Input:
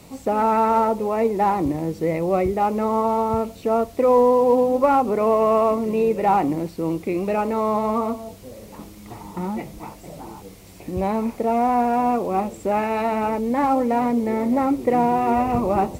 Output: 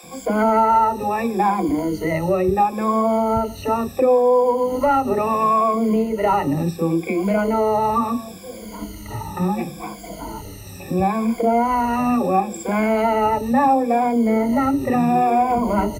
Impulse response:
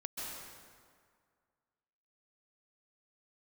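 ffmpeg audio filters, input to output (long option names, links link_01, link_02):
-filter_complex "[0:a]afftfilt=real='re*pow(10,20/40*sin(2*PI*(1.8*log(max(b,1)*sr/1024/100)/log(2)-(-0.72)*(pts-256)/sr)))':imag='im*pow(10,20/40*sin(2*PI*(1.8*log(max(b,1)*sr/1024/100)/log(2)-(-0.72)*(pts-256)/sr)))':win_size=1024:overlap=0.75,acompressor=threshold=-18dB:ratio=2.5,acrossover=split=430[link_01][link_02];[link_01]adelay=30[link_03];[link_03][link_02]amix=inputs=2:normalize=0,volume=3dB"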